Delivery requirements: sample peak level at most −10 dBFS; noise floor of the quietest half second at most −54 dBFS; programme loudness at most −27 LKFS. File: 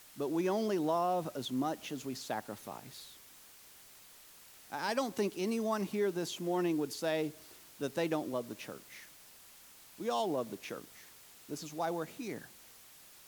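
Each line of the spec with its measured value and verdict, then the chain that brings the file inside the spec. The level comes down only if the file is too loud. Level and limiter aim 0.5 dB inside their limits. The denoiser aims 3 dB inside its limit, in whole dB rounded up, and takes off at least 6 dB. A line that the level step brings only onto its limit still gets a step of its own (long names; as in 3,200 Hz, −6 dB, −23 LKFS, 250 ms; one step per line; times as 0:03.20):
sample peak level −21.0 dBFS: in spec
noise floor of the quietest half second −57 dBFS: in spec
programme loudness −36.0 LKFS: in spec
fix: no processing needed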